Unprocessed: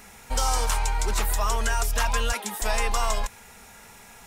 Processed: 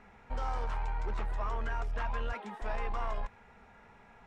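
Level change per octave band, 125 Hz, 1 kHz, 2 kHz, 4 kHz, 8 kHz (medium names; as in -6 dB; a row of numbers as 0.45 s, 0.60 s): -8.5 dB, -10.0 dB, -12.5 dB, -22.0 dB, -34.5 dB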